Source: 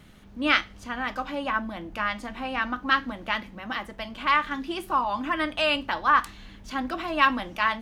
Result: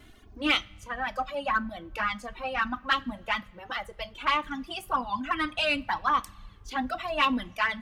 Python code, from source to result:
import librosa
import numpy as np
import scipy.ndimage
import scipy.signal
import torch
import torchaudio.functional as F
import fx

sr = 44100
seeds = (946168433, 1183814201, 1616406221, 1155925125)

p1 = fx.dereverb_blind(x, sr, rt60_s=1.8)
p2 = fx.env_flanger(p1, sr, rest_ms=3.0, full_db=-18.0)
p3 = 10.0 ** (-25.5 / 20.0) * np.tanh(p2 / 10.0 ** (-25.5 / 20.0))
p4 = p2 + (p3 * 10.0 ** (-7.0 / 20.0))
y = fx.rev_double_slope(p4, sr, seeds[0], early_s=0.28, late_s=1.6, knee_db=-18, drr_db=16.0)